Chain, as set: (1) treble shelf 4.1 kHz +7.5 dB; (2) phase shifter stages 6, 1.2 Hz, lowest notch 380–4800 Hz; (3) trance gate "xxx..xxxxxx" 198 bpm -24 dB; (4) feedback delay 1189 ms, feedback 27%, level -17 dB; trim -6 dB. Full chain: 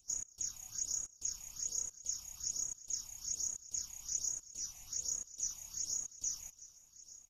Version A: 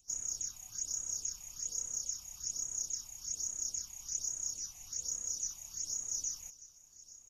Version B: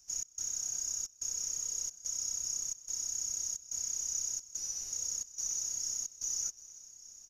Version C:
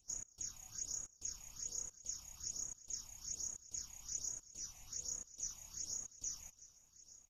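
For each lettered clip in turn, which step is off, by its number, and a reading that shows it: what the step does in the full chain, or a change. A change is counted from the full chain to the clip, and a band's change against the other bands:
3, loudness change +1.5 LU; 2, crest factor change -3.5 dB; 1, loudness change -5.5 LU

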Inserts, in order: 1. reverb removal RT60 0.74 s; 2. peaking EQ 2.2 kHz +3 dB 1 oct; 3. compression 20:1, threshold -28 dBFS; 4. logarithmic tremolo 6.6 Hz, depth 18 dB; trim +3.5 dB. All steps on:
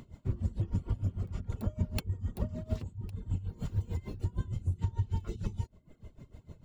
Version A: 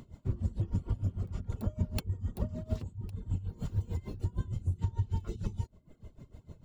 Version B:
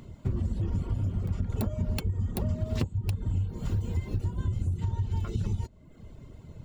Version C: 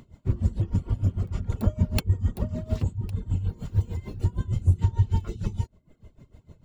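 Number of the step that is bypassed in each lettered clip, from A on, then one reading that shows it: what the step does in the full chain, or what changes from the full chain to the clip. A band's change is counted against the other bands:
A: 2, 2 kHz band -2.0 dB; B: 4, momentary loudness spread change -4 LU; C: 3, mean gain reduction 7.0 dB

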